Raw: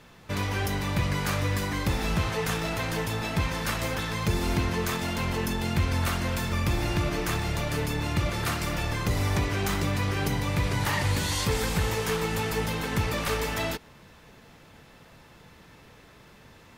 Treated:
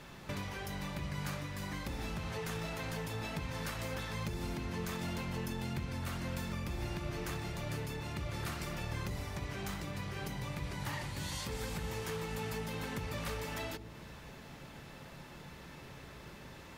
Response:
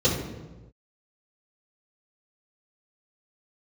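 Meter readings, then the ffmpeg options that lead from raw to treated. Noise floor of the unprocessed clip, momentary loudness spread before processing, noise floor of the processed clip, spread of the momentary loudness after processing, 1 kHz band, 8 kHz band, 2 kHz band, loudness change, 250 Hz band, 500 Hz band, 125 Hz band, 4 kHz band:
−53 dBFS, 3 LU, −51 dBFS, 12 LU, −12.0 dB, −12.0 dB, −12.0 dB, −12.0 dB, −10.5 dB, −11.5 dB, −11.5 dB, −12.0 dB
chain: -filter_complex "[0:a]acompressor=threshold=-39dB:ratio=6,asplit=2[link_01][link_02];[1:a]atrim=start_sample=2205[link_03];[link_02][link_03]afir=irnorm=-1:irlink=0,volume=-28dB[link_04];[link_01][link_04]amix=inputs=2:normalize=0,volume=1dB"

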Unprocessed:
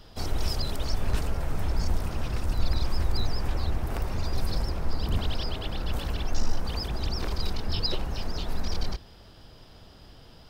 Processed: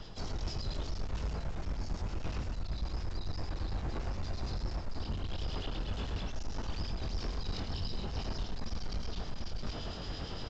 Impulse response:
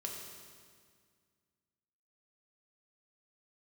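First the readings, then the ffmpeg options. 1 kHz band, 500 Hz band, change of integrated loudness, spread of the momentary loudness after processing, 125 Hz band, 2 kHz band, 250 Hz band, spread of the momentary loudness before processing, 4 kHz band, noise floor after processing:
−7.5 dB, −7.0 dB, −8.0 dB, 3 LU, −7.0 dB, −7.5 dB, −6.0 dB, 21 LU, −8.5 dB, −41 dBFS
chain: -filter_complex "[0:a]acrossover=split=340[link_01][link_02];[link_02]acompressor=threshold=-36dB:ratio=6[link_03];[link_01][link_03]amix=inputs=2:normalize=0,aecho=1:1:54|55|105|356|746:0.126|0.376|0.562|0.2|0.299,areverse,acompressor=threshold=-40dB:ratio=5,areverse,asplit=2[link_04][link_05];[link_05]adelay=22,volume=-6dB[link_06];[link_04][link_06]amix=inputs=2:normalize=0,asplit=2[link_07][link_08];[1:a]atrim=start_sample=2205,adelay=31[link_09];[link_08][link_09]afir=irnorm=-1:irlink=0,volume=-17dB[link_10];[link_07][link_10]amix=inputs=2:normalize=0,asoftclip=type=hard:threshold=-38.5dB,acrossover=split=2300[link_11][link_12];[link_11]aeval=exprs='val(0)*(1-0.5/2+0.5/2*cos(2*PI*8.8*n/s))':channel_layout=same[link_13];[link_12]aeval=exprs='val(0)*(1-0.5/2-0.5/2*cos(2*PI*8.8*n/s))':channel_layout=same[link_14];[link_13][link_14]amix=inputs=2:normalize=0,volume=9.5dB" -ar 16000 -c:a pcm_alaw

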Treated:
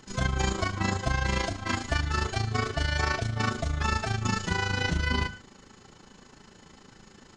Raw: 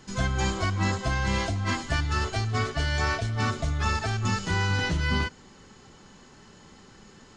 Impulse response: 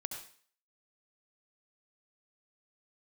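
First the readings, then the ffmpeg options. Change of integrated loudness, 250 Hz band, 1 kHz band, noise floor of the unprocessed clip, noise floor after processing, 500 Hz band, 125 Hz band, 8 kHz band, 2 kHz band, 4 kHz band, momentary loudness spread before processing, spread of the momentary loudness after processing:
−1.5 dB, −1.5 dB, −1.0 dB, −52 dBFS, −55 dBFS, −0.5 dB, −2.5 dB, −0.5 dB, −0.5 dB, −0.5 dB, 2 LU, 3 LU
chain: -filter_complex "[0:a]bandreject=frequency=50:width_type=h:width=6,bandreject=frequency=100:width_type=h:width=6,bandreject=frequency=150:width_type=h:width=6,bandreject=frequency=200:width_type=h:width=6,tremolo=f=27:d=0.71,asplit=2[link_01][link_02];[1:a]atrim=start_sample=2205,atrim=end_sample=6174[link_03];[link_02][link_03]afir=irnorm=-1:irlink=0,volume=-7.5dB[link_04];[link_01][link_04]amix=inputs=2:normalize=0"

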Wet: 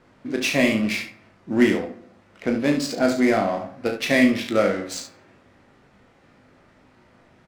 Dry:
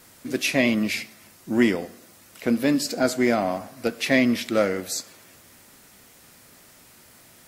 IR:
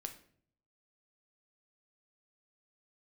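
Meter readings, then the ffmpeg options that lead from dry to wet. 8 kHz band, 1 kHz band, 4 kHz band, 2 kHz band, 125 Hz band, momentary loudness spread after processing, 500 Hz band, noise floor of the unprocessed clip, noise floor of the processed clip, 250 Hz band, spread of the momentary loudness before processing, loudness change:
−2.5 dB, +2.0 dB, +0.5 dB, +1.5 dB, +1.5 dB, 13 LU, +2.0 dB, −52 dBFS, −57 dBFS, +1.5 dB, 10 LU, +1.5 dB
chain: -filter_complex "[0:a]adynamicsmooth=sensitivity=5:basefreq=1900,aecho=1:1:36|71:0.422|0.355,asplit=2[link_01][link_02];[1:a]atrim=start_sample=2205,adelay=20[link_03];[link_02][link_03]afir=irnorm=-1:irlink=0,volume=-4.5dB[link_04];[link_01][link_04]amix=inputs=2:normalize=0"

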